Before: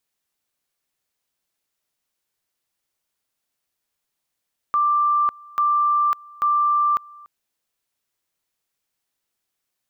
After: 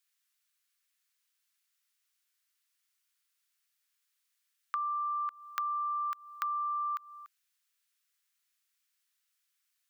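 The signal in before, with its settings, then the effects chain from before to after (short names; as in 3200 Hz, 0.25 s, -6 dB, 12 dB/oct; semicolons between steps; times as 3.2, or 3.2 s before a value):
two-level tone 1180 Hz -15.5 dBFS, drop 25 dB, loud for 0.55 s, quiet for 0.29 s, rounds 3
HPF 1300 Hz 24 dB/oct; compressor 10:1, threshold -32 dBFS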